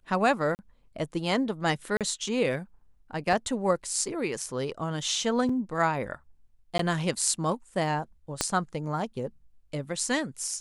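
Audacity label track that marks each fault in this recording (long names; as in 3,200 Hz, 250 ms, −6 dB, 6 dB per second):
0.550000	0.590000	drop-out 39 ms
1.970000	2.010000	drop-out 37 ms
3.330000	3.330000	drop-out 2.1 ms
5.490000	5.490000	drop-out 3.9 ms
6.780000	6.790000	drop-out 13 ms
8.410000	8.410000	click −9 dBFS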